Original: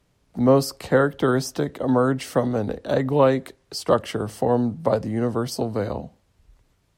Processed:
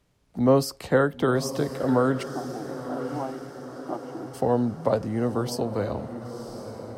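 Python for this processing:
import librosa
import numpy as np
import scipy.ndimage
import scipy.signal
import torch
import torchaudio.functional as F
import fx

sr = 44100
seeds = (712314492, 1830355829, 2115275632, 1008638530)

y = fx.double_bandpass(x, sr, hz=490.0, octaves=1.2, at=(2.22, 4.33), fade=0.02)
y = fx.echo_diffused(y, sr, ms=997, feedback_pct=54, wet_db=-11)
y = F.gain(torch.from_numpy(y), -2.5).numpy()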